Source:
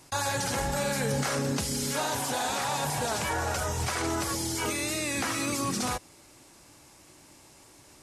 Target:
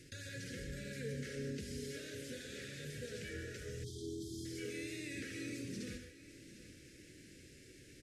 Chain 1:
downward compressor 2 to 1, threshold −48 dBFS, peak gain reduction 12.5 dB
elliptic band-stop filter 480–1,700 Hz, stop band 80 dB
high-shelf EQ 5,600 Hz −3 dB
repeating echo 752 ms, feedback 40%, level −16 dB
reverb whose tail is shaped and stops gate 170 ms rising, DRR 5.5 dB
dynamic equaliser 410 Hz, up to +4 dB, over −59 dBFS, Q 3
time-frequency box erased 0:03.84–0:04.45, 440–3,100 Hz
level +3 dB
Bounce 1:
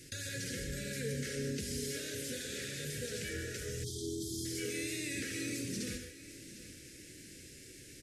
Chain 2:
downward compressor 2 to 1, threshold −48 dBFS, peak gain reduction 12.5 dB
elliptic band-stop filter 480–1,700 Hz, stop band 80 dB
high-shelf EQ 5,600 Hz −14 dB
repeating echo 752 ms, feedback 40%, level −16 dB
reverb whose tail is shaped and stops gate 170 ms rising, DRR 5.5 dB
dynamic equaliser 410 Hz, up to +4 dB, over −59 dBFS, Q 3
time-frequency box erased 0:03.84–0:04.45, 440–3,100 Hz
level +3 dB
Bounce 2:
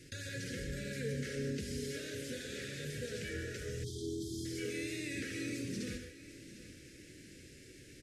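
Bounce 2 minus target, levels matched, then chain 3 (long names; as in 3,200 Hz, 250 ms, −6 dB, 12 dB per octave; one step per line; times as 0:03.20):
downward compressor: peak gain reduction −4 dB
downward compressor 2 to 1, threshold −56.5 dBFS, peak gain reduction 17 dB
elliptic band-stop filter 480–1,700 Hz, stop band 80 dB
high-shelf EQ 5,600 Hz −14 dB
repeating echo 752 ms, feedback 40%, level −16 dB
reverb whose tail is shaped and stops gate 170 ms rising, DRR 5.5 dB
dynamic equaliser 410 Hz, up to +4 dB, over −59 dBFS, Q 3
time-frequency box erased 0:03.84–0:04.45, 440–3,100 Hz
level +3 dB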